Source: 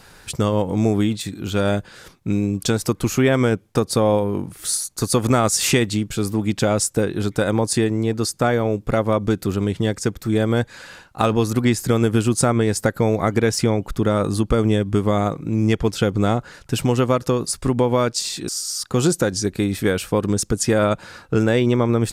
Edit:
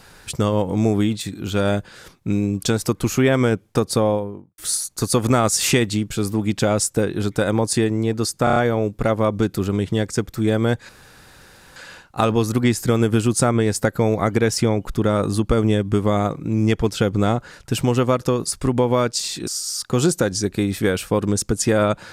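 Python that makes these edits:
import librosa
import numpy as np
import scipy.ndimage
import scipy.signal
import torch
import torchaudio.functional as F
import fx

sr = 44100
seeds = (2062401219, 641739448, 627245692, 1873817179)

y = fx.studio_fade_out(x, sr, start_s=3.91, length_s=0.67)
y = fx.edit(y, sr, fx.stutter(start_s=8.44, slice_s=0.03, count=5),
    fx.insert_room_tone(at_s=10.77, length_s=0.87), tone=tone)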